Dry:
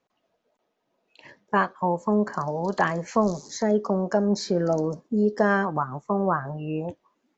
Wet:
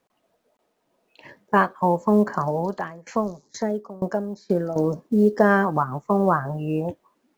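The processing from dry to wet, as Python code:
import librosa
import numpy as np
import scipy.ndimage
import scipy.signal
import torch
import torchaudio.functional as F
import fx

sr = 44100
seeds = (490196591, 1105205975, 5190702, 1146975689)

y = fx.high_shelf(x, sr, hz=2900.0, db=-7.0)
y = fx.quant_companded(y, sr, bits=8)
y = fx.tremolo_decay(y, sr, direction='decaying', hz=2.1, depth_db=23, at=(2.59, 4.76))
y = y * librosa.db_to_amplitude(4.5)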